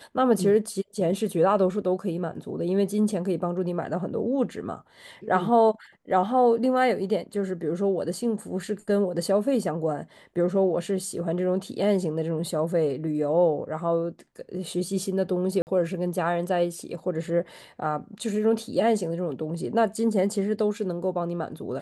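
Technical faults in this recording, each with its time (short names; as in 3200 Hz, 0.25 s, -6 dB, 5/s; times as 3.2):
15.62–15.67 gap 49 ms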